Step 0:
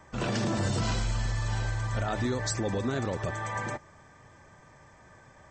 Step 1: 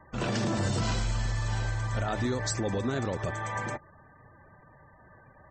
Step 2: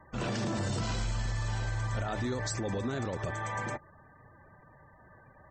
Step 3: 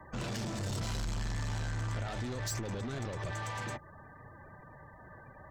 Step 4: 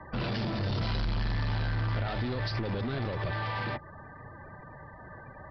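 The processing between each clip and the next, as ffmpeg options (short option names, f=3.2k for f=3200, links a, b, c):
-af "afftfilt=real='re*gte(hypot(re,im),0.00282)':imag='im*gte(hypot(re,im),0.00282)':win_size=1024:overlap=0.75"
-af "alimiter=limit=-23.5dB:level=0:latency=1:release=14,volume=-1.5dB"
-filter_complex "[0:a]asoftclip=type=tanh:threshold=-36.5dB,acrossover=split=160|3000[a][b][c];[b]acompressor=threshold=-46dB:ratio=2[d];[a][d][c]amix=inputs=3:normalize=0,volume=4.5dB"
-af "aresample=11025,aresample=44100,volume=5.5dB"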